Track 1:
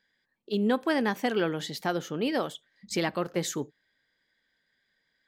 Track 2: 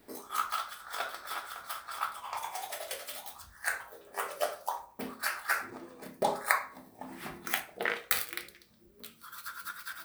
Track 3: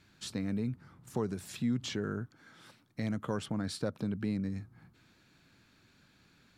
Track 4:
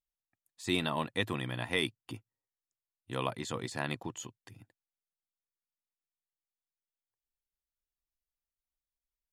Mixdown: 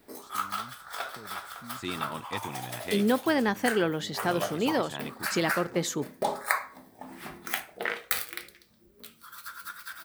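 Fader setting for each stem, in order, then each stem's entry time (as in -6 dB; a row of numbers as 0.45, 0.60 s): +1.0, +0.5, -16.0, -4.5 dB; 2.40, 0.00, 0.00, 1.15 s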